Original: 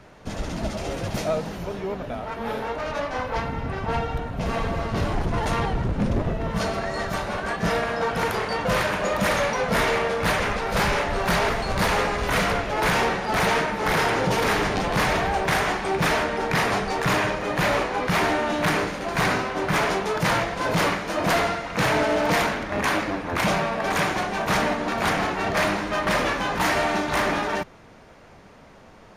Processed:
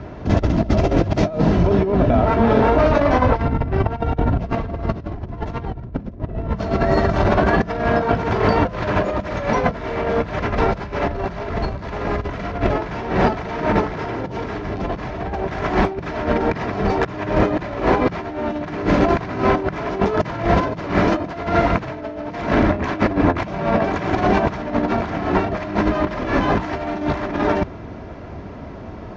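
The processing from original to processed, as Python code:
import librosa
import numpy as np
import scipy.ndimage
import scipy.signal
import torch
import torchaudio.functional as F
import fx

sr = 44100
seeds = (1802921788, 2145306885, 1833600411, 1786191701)

p1 = scipy.signal.sosfilt(scipy.signal.butter(6, 6500.0, 'lowpass', fs=sr, output='sos'), x)
p2 = p1 + 0.34 * np.pad(p1, (int(3.0 * sr / 1000.0), 0))[:len(p1)]
p3 = np.sign(p2) * np.maximum(np.abs(p2) - 10.0 ** (-40.5 / 20.0), 0.0)
p4 = p2 + (p3 * librosa.db_to_amplitude(-9.0))
p5 = scipy.signal.sosfilt(scipy.signal.butter(2, 74.0, 'highpass', fs=sr, output='sos'), p4)
p6 = fx.tilt_eq(p5, sr, slope=-3.5)
p7 = fx.over_compress(p6, sr, threshold_db=-23.0, ratio=-0.5)
y = p7 * librosa.db_to_amplitude(4.0)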